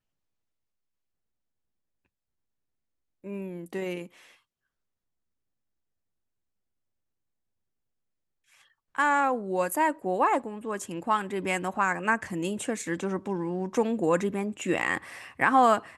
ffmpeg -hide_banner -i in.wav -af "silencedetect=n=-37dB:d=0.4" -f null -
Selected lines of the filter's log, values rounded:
silence_start: 0.00
silence_end: 3.25 | silence_duration: 3.25
silence_start: 4.06
silence_end: 8.95 | silence_duration: 4.90